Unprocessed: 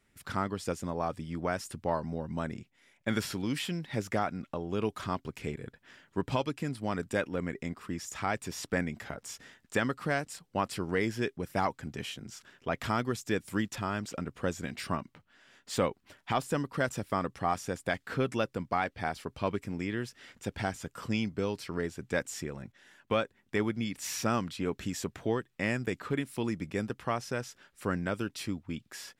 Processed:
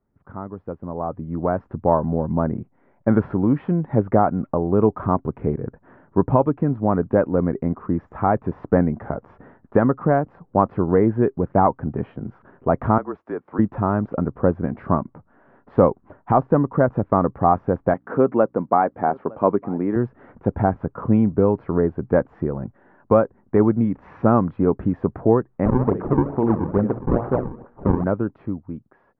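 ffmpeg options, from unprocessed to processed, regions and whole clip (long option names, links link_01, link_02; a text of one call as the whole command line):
ffmpeg -i in.wav -filter_complex "[0:a]asettb=1/sr,asplit=3[link_01][link_02][link_03];[link_01]atrim=end=12.984[link_04];[link_02]atrim=start=12.98:end=13.59,asetpts=PTS-STARTPTS,afade=type=in:duration=0.004:curve=qsin,afade=type=out:start_time=0.606:duration=0.004:curve=qsin,highpass=490,acompressor=threshold=-44dB:ratio=1.5:attack=3.2:release=140:knee=1:detection=peak,afreqshift=-36[link_05];[link_03]atrim=start=13.586[link_06];[link_04][link_05]acrossfade=duration=0.004:curve1=hsin:curve2=qsin[link_07];[link_07][link_06]acrossfade=duration=0.004:curve1=qsin:curve2=hsin,asettb=1/sr,asplit=3[link_08][link_09][link_10];[link_08]atrim=end=17.944[link_11];[link_09]atrim=start=17.94:end=19.96,asetpts=PTS-STARTPTS,afade=type=in:duration=0.004:curve=qsin,afade=type=out:start_time=2.016:duration=0.004:curve=qsin,aeval=exprs='val(0)+0.000562*(sin(2*PI*60*n/s)+sin(2*PI*2*60*n/s)/2+sin(2*PI*3*60*n/s)/3+sin(2*PI*4*60*n/s)/4+sin(2*PI*5*60*n/s)/5)':channel_layout=same,highpass=220,lowpass=5400,aecho=1:1:909:0.0631,atrim=end_sample=89082[link_12];[link_10]atrim=start=19.956[link_13];[link_11][link_12]acrossfade=duration=0.004:curve1=hsin:curve2=qsin[link_14];[link_14][link_13]acrossfade=duration=0.004:curve1=qsin:curve2=hsin,asettb=1/sr,asplit=3[link_15][link_16][link_17];[link_15]atrim=end=25.654[link_18];[link_16]atrim=start=25.65:end=28.04,asetpts=PTS-STARTPTS,afade=type=in:duration=0.004:curve=qsin,afade=type=out:start_time=2.386:duration=0.004:curve=qsin,bandreject=frequency=60:width_type=h:width=6,bandreject=frequency=120:width_type=h:width=6,bandreject=frequency=180:width_type=h:width=6,bandreject=frequency=240:width_type=h:width=6,bandreject=frequency=300:width_type=h:width=6,bandreject=frequency=360:width_type=h:width=6,bandreject=frequency=420:width_type=h:width=6,bandreject=frequency=480:width_type=h:width=6,bandreject=frequency=540:width_type=h:width=6,aecho=1:1:71|142|213|284:0.224|0.0806|0.029|0.0104,atrim=end_sample=105399,acrusher=samples=39:mix=1:aa=0.000001:lfo=1:lforange=62.4:lforate=2.3[link_19];[link_17]atrim=start=28.036[link_20];[link_18][link_19]acrossfade=duration=0.004:curve1=hsin:curve2=qsin[link_21];[link_21][link_20]acrossfade=duration=0.004:curve1=qsin:curve2=hsin,lowpass=frequency=1100:width=0.5412,lowpass=frequency=1100:width=1.3066,dynaudnorm=framelen=380:gausssize=7:maxgain=16dB" out.wav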